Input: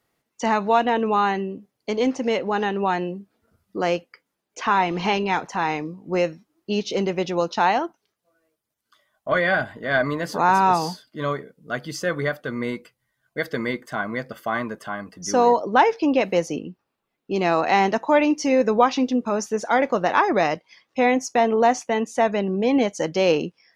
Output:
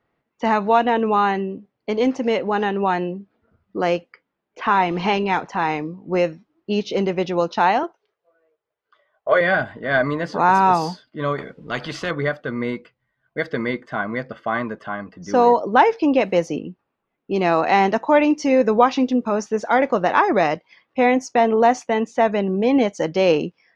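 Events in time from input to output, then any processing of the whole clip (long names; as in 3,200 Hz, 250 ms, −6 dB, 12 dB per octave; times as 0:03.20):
0:07.83–0:09.41: low shelf with overshoot 330 Hz −8.5 dB, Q 3
0:11.38–0:12.11: every bin compressed towards the loudest bin 2 to 1
whole clip: low-pass filter 3,700 Hz 6 dB per octave; low-pass that shuts in the quiet parts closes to 2,600 Hz, open at −16 dBFS; level +2.5 dB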